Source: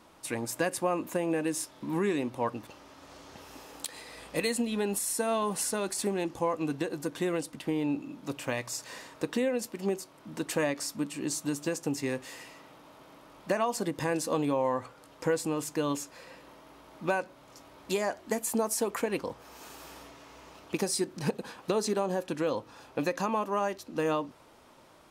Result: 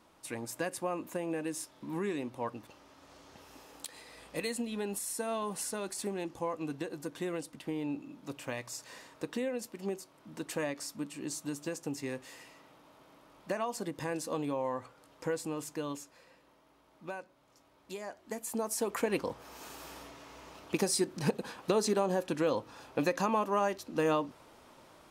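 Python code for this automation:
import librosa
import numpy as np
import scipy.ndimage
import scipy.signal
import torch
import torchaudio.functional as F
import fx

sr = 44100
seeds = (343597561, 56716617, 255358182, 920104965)

y = fx.gain(x, sr, db=fx.line((15.67, -6.0), (16.4, -12.5), (18.0, -12.5), (19.11, 0.0)))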